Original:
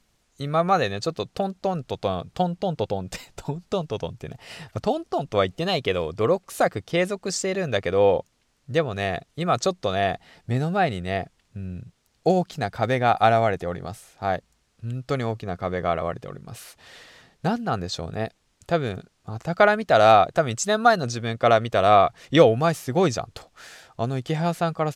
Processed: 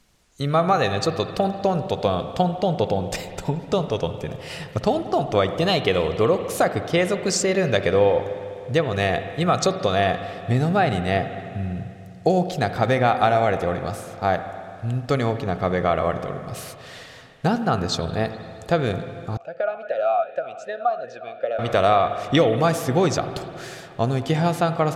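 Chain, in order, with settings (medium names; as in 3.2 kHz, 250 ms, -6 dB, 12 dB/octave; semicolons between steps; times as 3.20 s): compression 4:1, threshold -20 dBFS, peak gain reduction 10 dB; reverberation RT60 2.6 s, pre-delay 49 ms, DRR 9 dB; 19.37–21.59 s: talking filter a-e 2.6 Hz; trim +5 dB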